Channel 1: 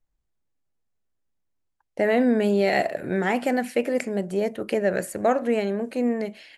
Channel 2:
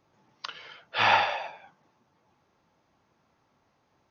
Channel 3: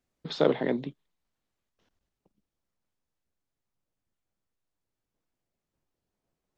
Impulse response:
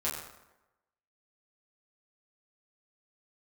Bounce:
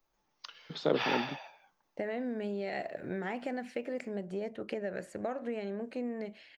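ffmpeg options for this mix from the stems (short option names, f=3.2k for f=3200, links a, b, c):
-filter_complex "[0:a]lowpass=5.2k,acompressor=threshold=-24dB:ratio=6,volume=-8.5dB[a];[1:a]aemphasis=mode=production:type=bsi,volume=-12.5dB[b];[2:a]adelay=450,volume=-5.5dB[c];[a][b][c]amix=inputs=3:normalize=0"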